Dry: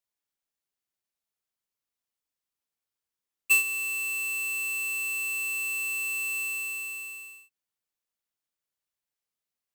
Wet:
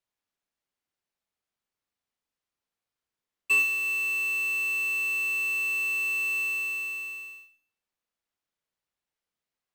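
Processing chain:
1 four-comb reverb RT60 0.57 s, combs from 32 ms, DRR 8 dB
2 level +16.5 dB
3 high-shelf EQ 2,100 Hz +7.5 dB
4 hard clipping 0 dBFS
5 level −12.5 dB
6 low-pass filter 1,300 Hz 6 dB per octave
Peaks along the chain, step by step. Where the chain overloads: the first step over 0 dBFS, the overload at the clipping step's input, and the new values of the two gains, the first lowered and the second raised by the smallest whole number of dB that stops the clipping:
−14.5, +2.0, +9.5, 0.0, −12.5, −16.0 dBFS
step 2, 9.5 dB
step 2 +6.5 dB, step 5 −2.5 dB

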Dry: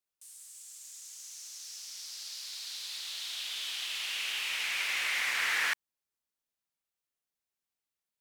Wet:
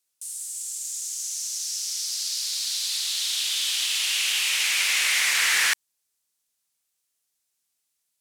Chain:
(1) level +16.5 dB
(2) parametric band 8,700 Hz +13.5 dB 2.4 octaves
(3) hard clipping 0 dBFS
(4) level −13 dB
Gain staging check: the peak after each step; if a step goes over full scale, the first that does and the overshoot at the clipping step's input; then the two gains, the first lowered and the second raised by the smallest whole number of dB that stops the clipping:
−2.0, +4.0, 0.0, −13.0 dBFS
step 2, 4.0 dB
step 1 +12.5 dB, step 4 −9 dB

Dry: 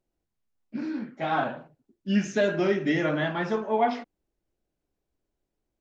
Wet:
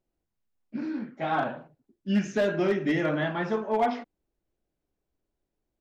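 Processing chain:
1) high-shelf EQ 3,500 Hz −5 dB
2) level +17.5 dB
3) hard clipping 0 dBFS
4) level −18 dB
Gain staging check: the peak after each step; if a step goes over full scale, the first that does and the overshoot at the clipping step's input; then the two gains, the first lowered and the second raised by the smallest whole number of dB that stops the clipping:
−12.5, +5.0, 0.0, −18.0 dBFS
step 2, 5.0 dB
step 2 +12.5 dB, step 4 −13 dB

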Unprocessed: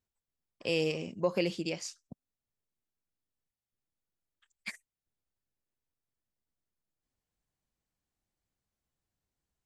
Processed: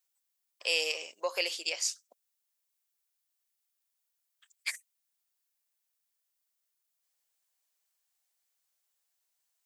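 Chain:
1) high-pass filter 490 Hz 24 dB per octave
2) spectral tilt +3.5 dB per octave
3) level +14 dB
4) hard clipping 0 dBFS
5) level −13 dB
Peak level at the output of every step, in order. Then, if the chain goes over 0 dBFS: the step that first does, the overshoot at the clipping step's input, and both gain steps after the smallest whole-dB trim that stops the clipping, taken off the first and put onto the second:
−19.0, −15.5, −1.5, −1.5, −14.5 dBFS
no step passes full scale

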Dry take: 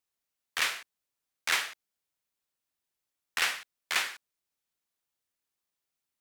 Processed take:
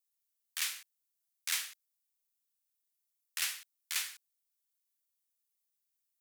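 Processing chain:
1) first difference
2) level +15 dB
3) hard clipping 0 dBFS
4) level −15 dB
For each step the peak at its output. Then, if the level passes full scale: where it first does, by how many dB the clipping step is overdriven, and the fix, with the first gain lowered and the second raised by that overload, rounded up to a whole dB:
−17.0, −2.0, −2.0, −17.0 dBFS
no step passes full scale

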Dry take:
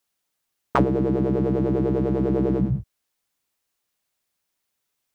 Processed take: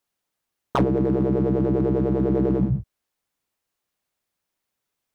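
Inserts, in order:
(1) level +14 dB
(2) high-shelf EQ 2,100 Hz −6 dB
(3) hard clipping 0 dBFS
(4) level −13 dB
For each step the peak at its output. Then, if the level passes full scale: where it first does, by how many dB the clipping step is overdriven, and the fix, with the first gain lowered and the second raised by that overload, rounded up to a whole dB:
+9.5, +8.0, 0.0, −13.0 dBFS
step 1, 8.0 dB
step 1 +6 dB, step 4 −5 dB

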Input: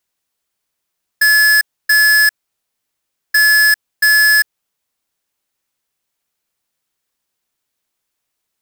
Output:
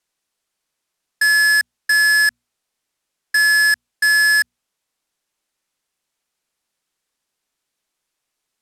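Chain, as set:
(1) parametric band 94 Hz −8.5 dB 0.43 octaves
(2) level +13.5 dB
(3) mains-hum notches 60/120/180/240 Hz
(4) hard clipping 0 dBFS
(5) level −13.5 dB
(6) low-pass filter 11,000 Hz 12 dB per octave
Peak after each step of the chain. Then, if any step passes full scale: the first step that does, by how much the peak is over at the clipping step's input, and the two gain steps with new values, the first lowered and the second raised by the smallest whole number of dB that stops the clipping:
−9.5, +4.0, +4.0, 0.0, −13.5, −11.5 dBFS
step 2, 4.0 dB
step 2 +9.5 dB, step 5 −9.5 dB

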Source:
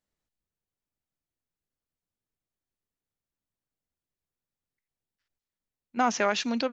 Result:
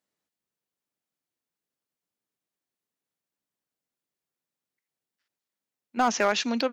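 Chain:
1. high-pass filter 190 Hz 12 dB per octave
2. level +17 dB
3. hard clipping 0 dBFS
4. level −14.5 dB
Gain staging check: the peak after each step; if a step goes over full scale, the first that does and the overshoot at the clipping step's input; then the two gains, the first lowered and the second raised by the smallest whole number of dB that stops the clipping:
−12.0, +5.0, 0.0, −14.5 dBFS
step 2, 5.0 dB
step 2 +12 dB, step 4 −9.5 dB

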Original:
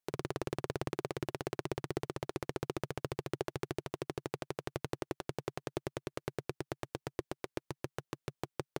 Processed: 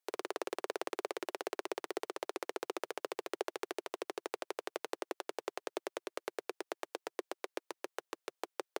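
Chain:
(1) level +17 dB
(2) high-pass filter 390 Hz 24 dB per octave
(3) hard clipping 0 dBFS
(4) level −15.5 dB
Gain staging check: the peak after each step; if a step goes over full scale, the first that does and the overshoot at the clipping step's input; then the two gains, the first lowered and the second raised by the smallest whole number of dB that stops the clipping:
−1.0, −2.5, −2.5, −18.0 dBFS
no step passes full scale

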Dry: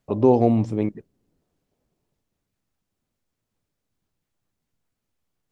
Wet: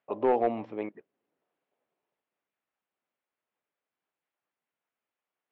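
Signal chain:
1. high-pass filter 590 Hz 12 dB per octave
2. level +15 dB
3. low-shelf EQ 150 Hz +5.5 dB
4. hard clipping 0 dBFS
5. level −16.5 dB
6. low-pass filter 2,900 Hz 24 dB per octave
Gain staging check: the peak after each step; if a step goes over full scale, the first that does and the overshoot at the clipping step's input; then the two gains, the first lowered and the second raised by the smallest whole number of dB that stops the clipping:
−11.5, +3.5, +4.0, 0.0, −16.5, −16.0 dBFS
step 2, 4.0 dB
step 2 +11 dB, step 5 −12.5 dB

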